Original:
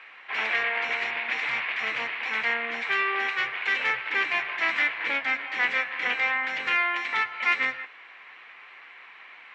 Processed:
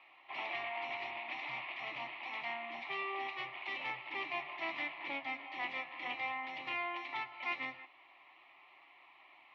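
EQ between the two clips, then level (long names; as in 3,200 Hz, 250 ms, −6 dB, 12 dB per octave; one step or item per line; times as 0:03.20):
high-pass filter 88 Hz
high-frequency loss of the air 240 metres
phaser with its sweep stopped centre 310 Hz, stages 8
−4.5 dB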